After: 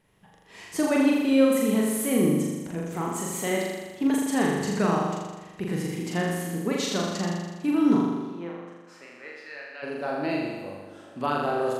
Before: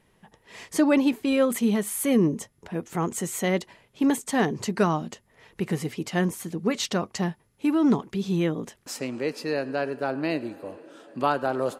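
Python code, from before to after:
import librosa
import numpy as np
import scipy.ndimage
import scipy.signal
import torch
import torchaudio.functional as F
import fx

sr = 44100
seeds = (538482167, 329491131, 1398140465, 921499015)

p1 = fx.bandpass_q(x, sr, hz=fx.line((8.06, 760.0), (9.82, 2400.0)), q=1.9, at=(8.06, 9.82), fade=0.02)
p2 = p1 + fx.room_flutter(p1, sr, wall_m=7.0, rt60_s=1.3, dry=0)
y = p2 * 10.0 ** (-4.5 / 20.0)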